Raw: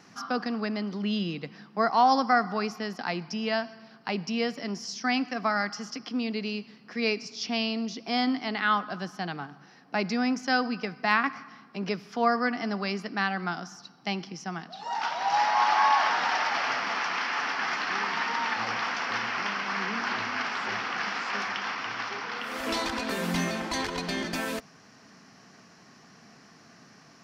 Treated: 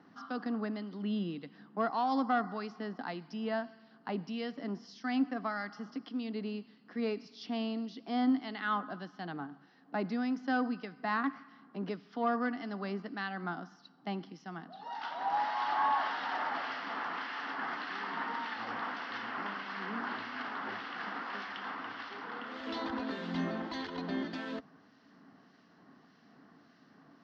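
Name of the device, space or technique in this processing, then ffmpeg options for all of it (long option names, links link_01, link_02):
guitar amplifier with harmonic tremolo: -filter_complex "[0:a]acrossover=split=1900[link_01][link_02];[link_01]aeval=exprs='val(0)*(1-0.5/2+0.5/2*cos(2*PI*1.7*n/s))':channel_layout=same[link_03];[link_02]aeval=exprs='val(0)*(1-0.5/2-0.5/2*cos(2*PI*1.7*n/s))':channel_layout=same[link_04];[link_03][link_04]amix=inputs=2:normalize=0,asoftclip=type=tanh:threshold=-16dB,highpass=78,equalizer=frequency=120:width_type=q:width=4:gain=-5,equalizer=frequency=280:width_type=q:width=4:gain=8,equalizer=frequency=2400:width_type=q:width=4:gain=-10,lowpass=frequency=3900:width=0.5412,lowpass=frequency=3900:width=1.3066,volume=-5dB"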